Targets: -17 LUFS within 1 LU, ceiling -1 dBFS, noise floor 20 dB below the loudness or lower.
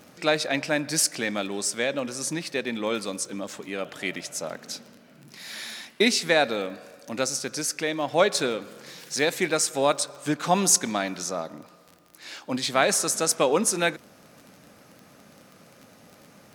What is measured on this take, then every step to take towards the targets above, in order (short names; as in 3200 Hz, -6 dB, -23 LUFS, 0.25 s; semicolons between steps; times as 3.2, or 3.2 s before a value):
ticks 27/s; loudness -25.5 LUFS; peak -5.5 dBFS; loudness target -17.0 LUFS
-> de-click; gain +8.5 dB; limiter -1 dBFS